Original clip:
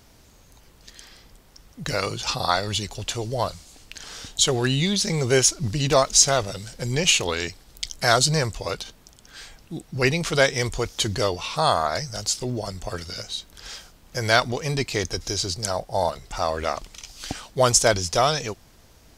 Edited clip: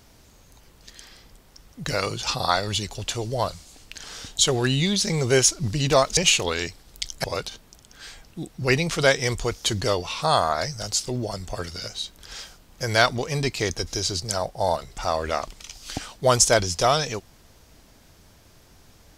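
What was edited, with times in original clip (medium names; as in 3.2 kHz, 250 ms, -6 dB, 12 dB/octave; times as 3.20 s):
6.17–6.98 s: delete
8.05–8.58 s: delete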